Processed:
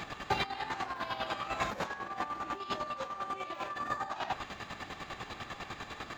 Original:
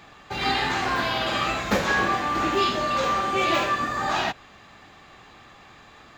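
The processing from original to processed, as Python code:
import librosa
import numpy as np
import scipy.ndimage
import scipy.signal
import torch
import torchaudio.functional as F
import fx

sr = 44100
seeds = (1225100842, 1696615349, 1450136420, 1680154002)

y = fx.dynamic_eq(x, sr, hz=900.0, q=1.1, threshold_db=-37.0, ratio=4.0, max_db=7)
y = fx.over_compress(y, sr, threshold_db=-32.0, ratio=-1.0)
y = fx.chopper(y, sr, hz=10.0, depth_pct=60, duty_pct=35)
y = y * librosa.db_to_amplitude(-2.0)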